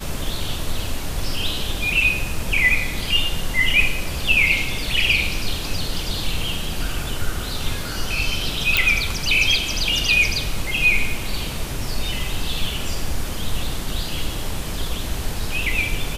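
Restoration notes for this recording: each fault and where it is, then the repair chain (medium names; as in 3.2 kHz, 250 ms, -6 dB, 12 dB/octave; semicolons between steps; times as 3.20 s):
8.77 s: pop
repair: de-click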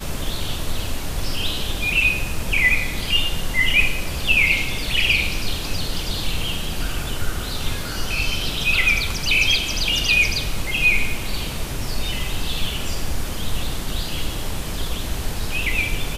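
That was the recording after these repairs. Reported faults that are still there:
nothing left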